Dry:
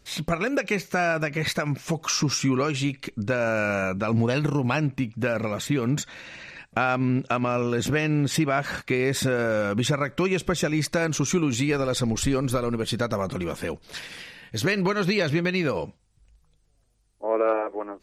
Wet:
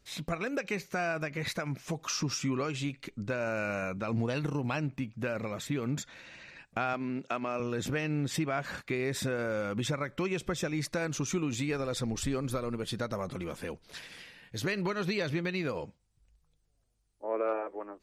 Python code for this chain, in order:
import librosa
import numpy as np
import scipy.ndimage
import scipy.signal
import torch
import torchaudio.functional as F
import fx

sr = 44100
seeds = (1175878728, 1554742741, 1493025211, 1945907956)

y = fx.highpass(x, sr, hz=220.0, slope=12, at=(6.93, 7.6))
y = y * librosa.db_to_amplitude(-8.5)